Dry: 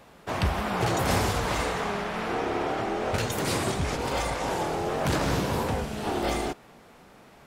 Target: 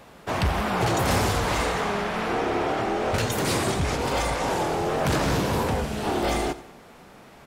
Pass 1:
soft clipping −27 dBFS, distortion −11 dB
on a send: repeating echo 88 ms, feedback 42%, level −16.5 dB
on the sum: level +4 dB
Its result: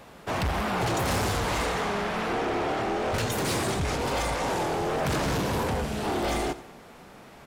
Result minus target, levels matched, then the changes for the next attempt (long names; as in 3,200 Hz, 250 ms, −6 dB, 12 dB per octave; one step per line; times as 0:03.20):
soft clipping: distortion +9 dB
change: soft clipping −19 dBFS, distortion −19 dB